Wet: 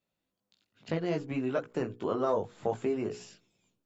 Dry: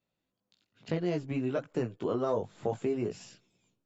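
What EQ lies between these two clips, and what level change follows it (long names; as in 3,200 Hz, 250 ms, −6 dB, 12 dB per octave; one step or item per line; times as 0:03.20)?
dynamic equaliser 1,200 Hz, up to +4 dB, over −45 dBFS, Q 0.75
parametric band 130 Hz −3.5 dB 0.32 octaves
mains-hum notches 60/120/180/240/300/360/420/480 Hz
0.0 dB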